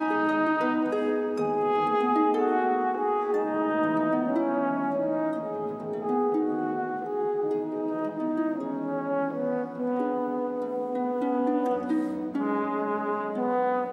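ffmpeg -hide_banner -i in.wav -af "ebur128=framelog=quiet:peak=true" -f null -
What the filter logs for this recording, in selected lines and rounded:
Integrated loudness:
  I:         -27.3 LUFS
  Threshold: -37.3 LUFS
Loudness range:
  LRA:         3.9 LU
  Threshold: -47.5 LUFS
  LRA low:   -29.3 LUFS
  LRA high:  -25.3 LUFS
True peak:
  Peak:      -13.0 dBFS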